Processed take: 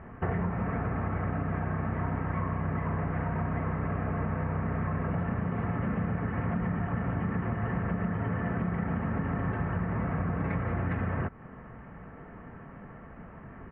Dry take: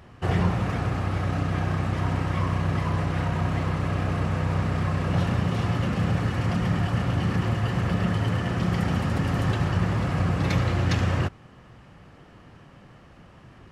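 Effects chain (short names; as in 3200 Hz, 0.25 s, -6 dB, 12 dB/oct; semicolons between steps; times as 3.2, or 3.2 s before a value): steep low-pass 2100 Hz 36 dB/oct; comb 4.5 ms, depth 35%; compressor, threshold -31 dBFS, peak gain reduction 12.5 dB; gain +3.5 dB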